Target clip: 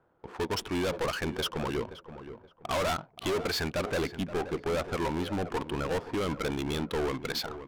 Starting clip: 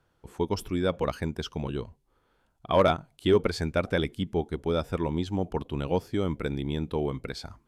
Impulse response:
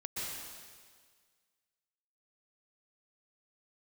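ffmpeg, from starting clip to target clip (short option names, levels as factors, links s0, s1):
-filter_complex "[0:a]asettb=1/sr,asplit=3[s0][s1][s2];[s0]atrim=end=3.794[s3];[s1]atrim=start=3.79:end=6.21,asetpts=PTS-STARTPTS,afade=t=in:d=0.004:c=qsin,afade=t=out:st=2.416:d=0.004:c=qsin,acrossover=split=2700[s4][s5];[s5]acompressor=threshold=0.00224:ratio=4:attack=1:release=60[s6];[s4][s6]amix=inputs=2:normalize=0[s7];[s2]atrim=start=6.206[s8];[s3][s7]acrossfade=d=0.004:c1=hsin:c2=qsin[s9];[s9][s8]acrossfade=d=0.004:c1=qsin:c2=hsin,asplit=2[s10][s11];[s11]highpass=f=720:p=1,volume=14.1,asoftclip=type=tanh:threshold=0.251[s12];[s10][s12]amix=inputs=2:normalize=0,lowpass=f=6000:p=1,volume=0.501,asoftclip=type=hard:threshold=0.0841,adynamicsmooth=sensitivity=8:basefreq=720,asplit=2[s13][s14];[s14]adelay=525,lowpass=f=1800:p=1,volume=0.251,asplit=2[s15][s16];[s16]adelay=525,lowpass=f=1800:p=1,volume=0.32,asplit=2[s17][s18];[s18]adelay=525,lowpass=f=1800:p=1,volume=0.32[s19];[s13][s15][s17][s19]amix=inputs=4:normalize=0,volume=0.531"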